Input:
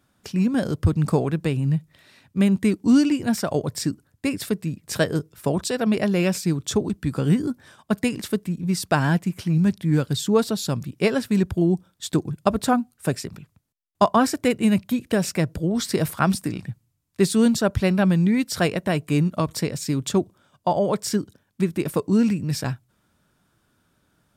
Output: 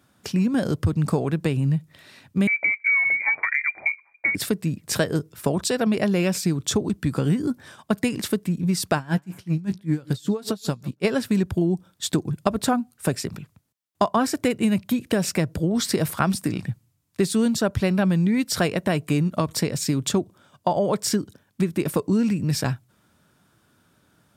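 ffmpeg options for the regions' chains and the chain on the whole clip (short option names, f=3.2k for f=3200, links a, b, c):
-filter_complex "[0:a]asettb=1/sr,asplit=3[a][b][c];[a]atrim=end=2.474[d];[b]atrim=start=2.47:end=4.35,asetpts=PTS-STARTPTS,afade=t=in:d=0.004:c=qsin,afade=t=out:st=1.876:d=0.004:c=qsin,lowpass=f=2.1k:t=q:w=0.5098,lowpass=f=2.1k:t=q:w=0.6013,lowpass=f=2.1k:t=q:w=0.9,lowpass=f=2.1k:t=q:w=2.563,afreqshift=-2500,acompressor=threshold=-19dB:ratio=2:attack=3.2:release=140:knee=1:detection=peak[e];[c]atrim=start=4.346[f];[d][e]acrossfade=d=0.004:c1=hsin:c2=qsin[g];[g][f]acrossfade=d=0.004:c1=qsin:c2=hsin,asettb=1/sr,asplit=3[h][i][j];[h]atrim=end=8.964[k];[i]atrim=start=8.96:end=11.05,asetpts=PTS-STARTPTS,afade=t=in:d=0.004:c=qsin,afade=t=out:st=2.086:d=0.004:c=qsin,asplit=2[l][m];[m]adelay=16,volume=-12.5dB[n];[l][n]amix=inputs=2:normalize=0,atrim=end_sample=92169,asplit=2[o][p];[p]adelay=142,lowpass=f=4.7k:p=1,volume=-22dB,asplit=2[q][r];[r]adelay=142,lowpass=f=4.7k:p=1,volume=0.27[s];[o][q][s]amix=inputs=3:normalize=0,atrim=end_sample=92169,aeval=exprs='val(0)*pow(10,-24*(0.5-0.5*cos(2*PI*5.2*n/s))/20)':c=same[t];[j]atrim=start=11.046[u];[k][t]acrossfade=d=0.004:c1=hsin:c2=qsin[v];[v][u]acrossfade=d=0.004:c1=qsin:c2=hsin,highpass=71,acompressor=threshold=-24dB:ratio=3,volume=4.5dB"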